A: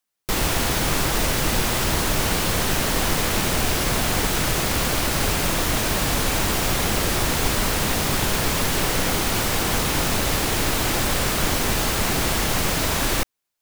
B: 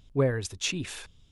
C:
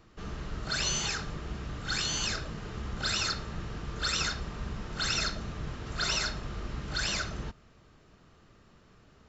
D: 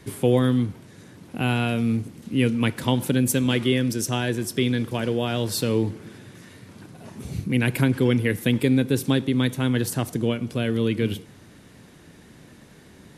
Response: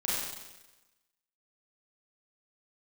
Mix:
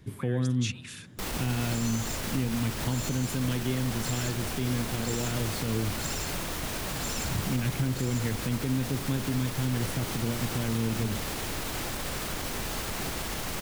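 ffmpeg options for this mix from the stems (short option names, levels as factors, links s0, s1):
-filter_complex "[0:a]alimiter=limit=0.2:level=0:latency=1:release=55,adelay=900,volume=0.335[s0];[1:a]highpass=f=1200:w=0.5412,highpass=f=1200:w=1.3066,volume=0.668[s1];[2:a]lowpass=f=7300:t=q:w=9.7,adelay=1000,volume=0.188[s2];[3:a]bass=f=250:g=10,treble=f=4000:g=-4,volume=0.266,asplit=2[s3][s4];[s4]volume=0.0841[s5];[4:a]atrim=start_sample=2205[s6];[s5][s6]afir=irnorm=-1:irlink=0[s7];[s0][s1][s2][s3][s7]amix=inputs=5:normalize=0,alimiter=limit=0.112:level=0:latency=1:release=157"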